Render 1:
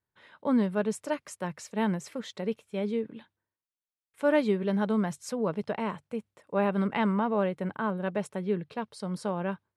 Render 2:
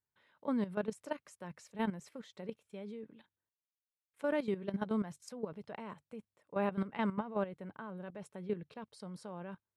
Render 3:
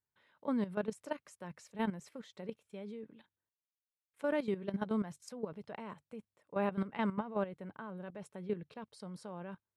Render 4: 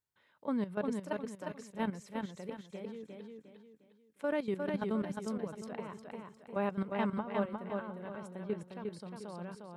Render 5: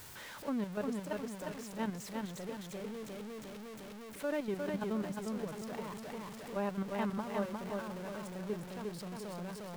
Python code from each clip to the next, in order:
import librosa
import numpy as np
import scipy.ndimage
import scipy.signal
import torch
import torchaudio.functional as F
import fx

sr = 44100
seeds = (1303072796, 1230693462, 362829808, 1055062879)

y1 = fx.level_steps(x, sr, step_db=13)
y1 = y1 * 10.0 ** (-5.5 / 20.0)
y2 = y1
y3 = fx.echo_feedback(y2, sr, ms=355, feedback_pct=36, wet_db=-4)
y4 = y3 + 0.5 * 10.0 ** (-39.0 / 20.0) * np.sign(y3)
y4 = y4 * 10.0 ** (-3.5 / 20.0)